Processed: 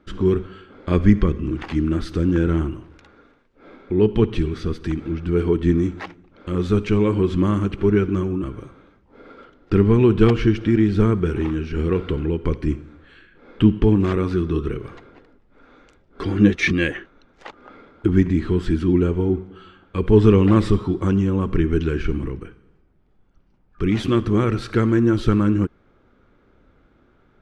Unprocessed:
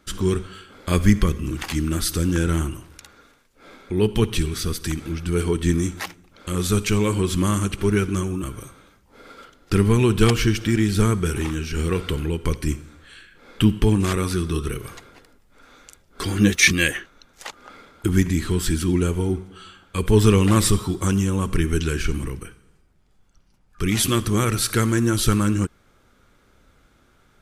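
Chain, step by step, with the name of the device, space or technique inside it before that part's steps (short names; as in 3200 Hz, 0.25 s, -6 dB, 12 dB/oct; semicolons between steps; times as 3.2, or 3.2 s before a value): phone in a pocket (LPF 3700 Hz 12 dB/oct; bell 330 Hz +5 dB 1.3 oct; high shelf 2500 Hz -9 dB)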